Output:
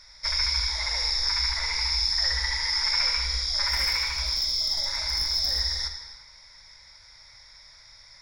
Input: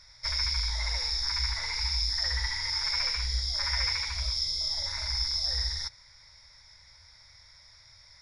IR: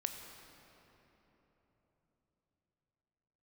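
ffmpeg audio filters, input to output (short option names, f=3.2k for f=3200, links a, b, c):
-filter_complex "[0:a]equalizer=f=87:t=o:w=1.2:g=-10.5,asplit=3[a][b][c];[a]afade=t=out:st=3.67:d=0.02[d];[b]asoftclip=type=hard:threshold=-25dB,afade=t=in:st=3.67:d=0.02,afade=t=out:st=5.59:d=0.02[e];[c]afade=t=in:st=5.59:d=0.02[f];[d][e][f]amix=inputs=3:normalize=0[g];[1:a]atrim=start_sample=2205,afade=t=out:st=0.4:d=0.01,atrim=end_sample=18081[h];[g][h]afir=irnorm=-1:irlink=0,volume=5dB"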